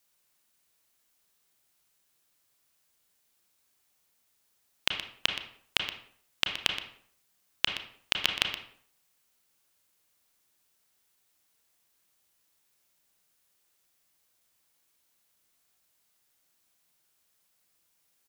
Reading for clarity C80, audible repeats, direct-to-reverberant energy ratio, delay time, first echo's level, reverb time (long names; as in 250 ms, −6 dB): 8.5 dB, 1, 3.0 dB, 122 ms, −12.0 dB, 0.60 s